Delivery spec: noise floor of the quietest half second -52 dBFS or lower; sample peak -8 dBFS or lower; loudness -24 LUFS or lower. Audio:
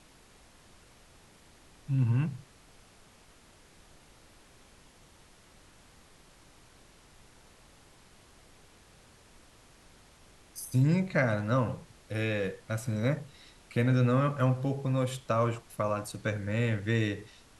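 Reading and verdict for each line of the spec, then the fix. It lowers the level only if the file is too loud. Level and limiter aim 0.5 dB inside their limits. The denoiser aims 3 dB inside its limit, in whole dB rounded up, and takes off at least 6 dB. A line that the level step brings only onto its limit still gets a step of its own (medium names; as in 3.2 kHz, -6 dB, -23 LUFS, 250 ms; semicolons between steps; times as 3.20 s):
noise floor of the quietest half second -58 dBFS: pass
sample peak -13.5 dBFS: pass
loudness -30.0 LUFS: pass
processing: none needed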